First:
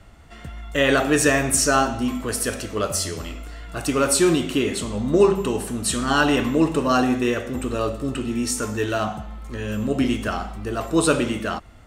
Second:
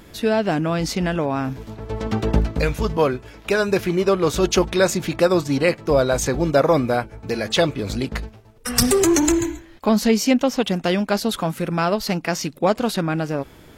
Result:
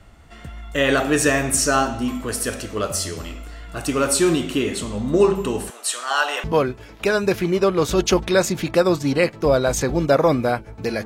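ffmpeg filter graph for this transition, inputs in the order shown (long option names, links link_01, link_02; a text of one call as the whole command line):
ffmpeg -i cue0.wav -i cue1.wav -filter_complex "[0:a]asettb=1/sr,asplit=3[link_01][link_02][link_03];[link_01]atrim=end=5.704[link_04];[link_02]atrim=start=5.7:end=6.44,asetpts=PTS-STARTPTS,afade=type=in:duration=0.004:curve=qsin,afade=type=out:start_time=0.736:duration=0.004:curve=qsin,highpass=frequency=580:width=0.5412,highpass=frequency=580:width=1.3066[link_05];[link_03]atrim=start=6.436[link_06];[link_04][link_05]acrossfade=duration=0.004:curve1=hsin:curve2=qsin[link_07];[link_07][link_06]acrossfade=duration=0.004:curve1=qsin:curve2=hsin,apad=whole_dur=11.05,atrim=end=11.05,atrim=end=6.442[link_08];[1:a]atrim=start=2.888:end=7.5[link_09];[link_08][link_09]acrossfade=duration=0.004:curve1=hsin:curve2=hsin" out.wav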